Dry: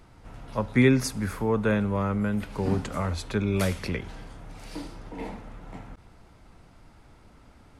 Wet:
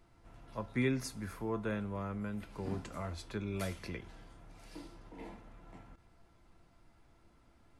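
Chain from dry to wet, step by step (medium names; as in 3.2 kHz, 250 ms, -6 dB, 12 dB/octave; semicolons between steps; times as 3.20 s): feedback comb 340 Hz, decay 0.19 s, harmonics all, mix 70%; trim -3.5 dB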